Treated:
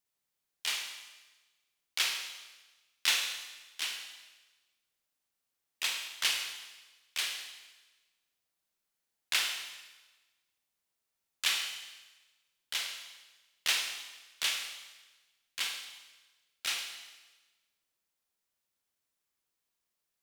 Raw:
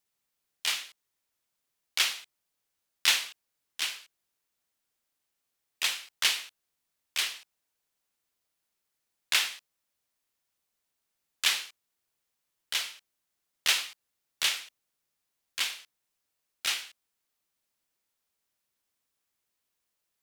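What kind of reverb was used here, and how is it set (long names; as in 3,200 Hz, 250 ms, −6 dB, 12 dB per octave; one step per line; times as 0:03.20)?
four-comb reverb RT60 1.2 s, combs from 33 ms, DRR 4 dB
level −4.5 dB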